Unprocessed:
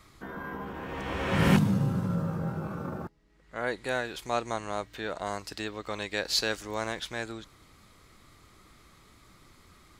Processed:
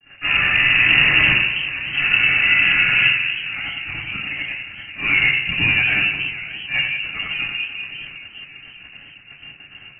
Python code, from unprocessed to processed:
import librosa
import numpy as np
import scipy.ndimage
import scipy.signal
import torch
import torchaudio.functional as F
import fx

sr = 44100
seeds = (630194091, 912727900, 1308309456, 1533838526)

p1 = fx.level_steps(x, sr, step_db=20)
p2 = x + (p1 * librosa.db_to_amplitude(-1.0))
p3 = fx.low_shelf(p2, sr, hz=360.0, db=-10.5, at=(1.78, 2.91))
p4 = fx.gate_flip(p3, sr, shuts_db=-16.0, range_db=-37)
p5 = fx.fuzz(p4, sr, gain_db=43.0, gate_db=-47.0)
p6 = fx.echo_split(p5, sr, split_hz=460.0, low_ms=203, high_ms=92, feedback_pct=52, wet_db=-7.5)
p7 = fx.auto_swell(p6, sr, attack_ms=116.0)
p8 = fx.room_shoebox(p7, sr, seeds[0], volume_m3=150.0, walls='furnished', distance_m=5.0)
p9 = fx.freq_invert(p8, sr, carrier_hz=2800)
p10 = fx.graphic_eq(p9, sr, hz=(125, 500, 1000), db=(7, -7, -9))
p11 = fx.echo_warbled(p10, sr, ms=578, feedback_pct=50, rate_hz=2.8, cents=181, wet_db=-16.0)
y = p11 * librosa.db_to_amplitude(-11.5)